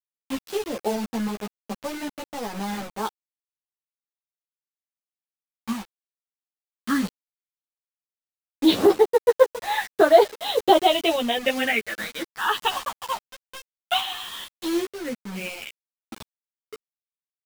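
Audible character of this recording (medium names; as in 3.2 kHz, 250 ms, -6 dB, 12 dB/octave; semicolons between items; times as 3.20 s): phasing stages 6, 0.13 Hz, lowest notch 450–2800 Hz; a quantiser's noise floor 6-bit, dither none; random-step tremolo; a shimmering, thickened sound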